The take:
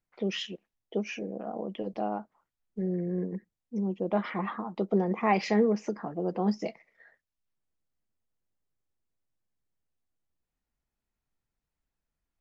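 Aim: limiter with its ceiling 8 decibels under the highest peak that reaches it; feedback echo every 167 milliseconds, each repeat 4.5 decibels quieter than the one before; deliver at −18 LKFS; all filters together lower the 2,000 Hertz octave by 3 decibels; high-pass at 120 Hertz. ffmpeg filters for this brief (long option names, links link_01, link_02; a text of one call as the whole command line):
ffmpeg -i in.wav -af "highpass=120,equalizer=frequency=2000:width_type=o:gain=-3.5,alimiter=limit=-22dB:level=0:latency=1,aecho=1:1:167|334|501|668|835|1002|1169|1336|1503:0.596|0.357|0.214|0.129|0.0772|0.0463|0.0278|0.0167|0.01,volume=14.5dB" out.wav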